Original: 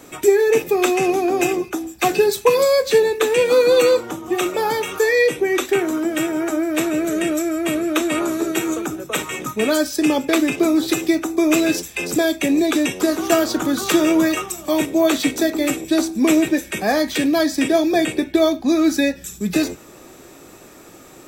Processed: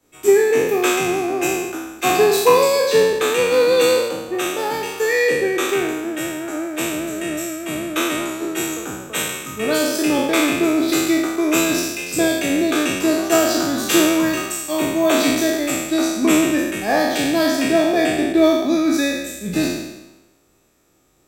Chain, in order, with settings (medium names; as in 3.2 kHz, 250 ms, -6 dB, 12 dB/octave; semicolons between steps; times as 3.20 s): spectral sustain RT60 1.57 s; three bands expanded up and down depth 70%; trim -3 dB